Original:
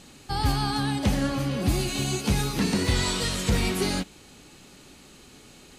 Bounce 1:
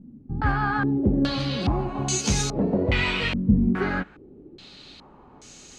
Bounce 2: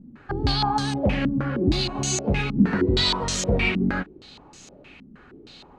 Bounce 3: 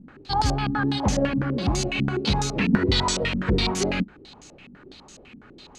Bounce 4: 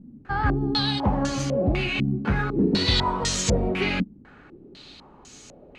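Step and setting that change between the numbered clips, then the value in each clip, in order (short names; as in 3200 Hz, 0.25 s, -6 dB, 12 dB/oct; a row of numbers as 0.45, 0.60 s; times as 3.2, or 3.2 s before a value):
stepped low-pass, rate: 2.4, 6.4, 12, 4 Hz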